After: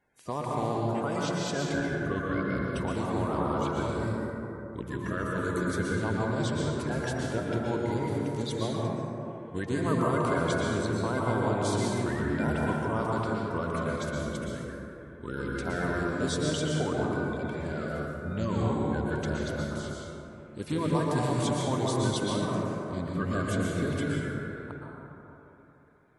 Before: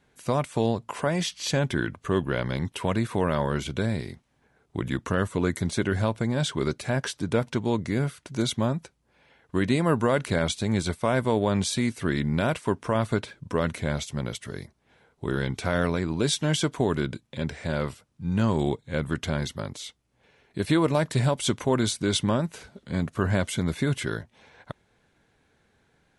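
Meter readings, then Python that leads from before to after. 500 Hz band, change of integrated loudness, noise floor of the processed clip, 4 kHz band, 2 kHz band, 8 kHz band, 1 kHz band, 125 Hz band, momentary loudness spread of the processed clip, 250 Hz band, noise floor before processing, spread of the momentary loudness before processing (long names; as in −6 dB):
−3.0 dB, −3.5 dB, −48 dBFS, −7.0 dB, −2.0 dB, −6.0 dB, −0.5 dB, −3.5 dB, 10 LU, −3.0 dB, −68 dBFS, 10 LU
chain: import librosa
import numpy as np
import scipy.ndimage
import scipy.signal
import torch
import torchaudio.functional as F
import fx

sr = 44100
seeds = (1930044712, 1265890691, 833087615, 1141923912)

y = fx.spec_quant(x, sr, step_db=30)
y = fx.rev_plate(y, sr, seeds[0], rt60_s=3.2, hf_ratio=0.3, predelay_ms=105, drr_db=-4.0)
y = F.gain(torch.from_numpy(y), -8.5).numpy()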